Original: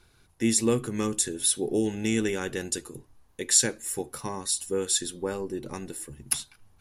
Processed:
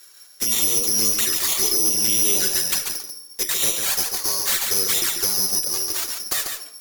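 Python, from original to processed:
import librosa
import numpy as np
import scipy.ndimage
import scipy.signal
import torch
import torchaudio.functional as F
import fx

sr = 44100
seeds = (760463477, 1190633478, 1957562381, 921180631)

p1 = (np.kron(x[::8], np.eye(8)[0]) * 8)[:len(x)]
p2 = fx.room_shoebox(p1, sr, seeds[0], volume_m3=2600.0, walls='furnished', distance_m=1.1)
p3 = fx.env_flanger(p2, sr, rest_ms=8.8, full_db=-12.5)
p4 = fx.peak_eq(p3, sr, hz=880.0, db=-4.5, octaves=0.97)
p5 = np.clip(10.0 ** (15.5 / 20.0) * p4, -1.0, 1.0) / 10.0 ** (15.5 / 20.0)
p6 = p4 + (p5 * 10.0 ** (-5.0 / 20.0))
p7 = scipy.signal.sosfilt(scipy.signal.butter(2, 610.0, 'highpass', fs=sr, output='sos'), p6)
p8 = fx.over_compress(p7, sr, threshold_db=-19.0, ratio=-1.0)
p9 = fx.tube_stage(p8, sr, drive_db=16.0, bias=0.25)
p10 = p9 + 10.0 ** (-6.0 / 20.0) * np.pad(p9, (int(142 * sr / 1000.0), 0))[:len(p9)]
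y = p10 * 10.0 ** (3.0 / 20.0)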